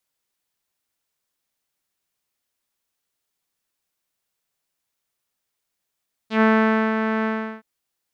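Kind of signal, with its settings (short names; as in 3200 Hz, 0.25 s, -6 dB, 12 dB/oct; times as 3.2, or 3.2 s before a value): synth note saw A3 12 dB/oct, low-pass 1700 Hz, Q 2.2, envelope 1.5 oct, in 0.08 s, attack 0.109 s, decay 0.52 s, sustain -7 dB, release 0.37 s, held 0.95 s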